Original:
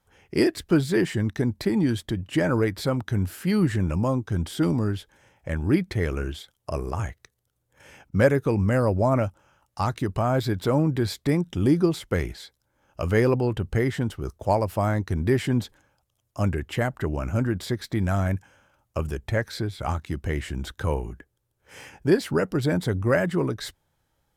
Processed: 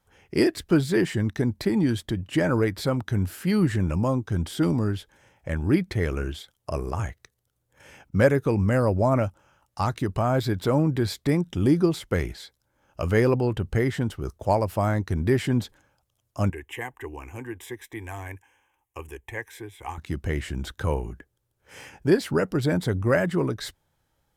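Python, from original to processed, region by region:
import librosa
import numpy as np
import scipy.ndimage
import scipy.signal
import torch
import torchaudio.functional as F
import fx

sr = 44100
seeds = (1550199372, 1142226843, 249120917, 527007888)

y = fx.chain(x, sr, fx.low_shelf(hz=450.0, db=-11.0),
    fx.fixed_phaser(hz=910.0, stages=8), at=(16.5, 19.98))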